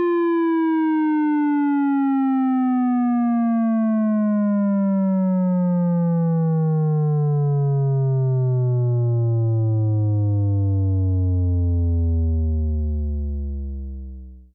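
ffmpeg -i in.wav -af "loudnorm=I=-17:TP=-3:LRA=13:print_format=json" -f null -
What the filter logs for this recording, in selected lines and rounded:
"input_i" : "-20.6",
"input_tp" : "-17.8",
"input_lra" : "4.9",
"input_thresh" : "-30.9",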